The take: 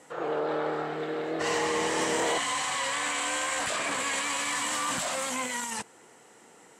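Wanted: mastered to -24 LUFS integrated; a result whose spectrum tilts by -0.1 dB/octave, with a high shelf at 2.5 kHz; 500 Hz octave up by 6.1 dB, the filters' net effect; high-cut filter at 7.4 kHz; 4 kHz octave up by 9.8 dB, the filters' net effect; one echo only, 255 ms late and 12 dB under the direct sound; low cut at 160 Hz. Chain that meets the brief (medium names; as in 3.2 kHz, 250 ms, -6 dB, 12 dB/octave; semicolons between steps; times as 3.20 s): high-pass 160 Hz; low-pass 7.4 kHz; peaking EQ 500 Hz +6.5 dB; treble shelf 2.5 kHz +6 dB; peaking EQ 4 kHz +8 dB; delay 255 ms -12 dB; trim -1 dB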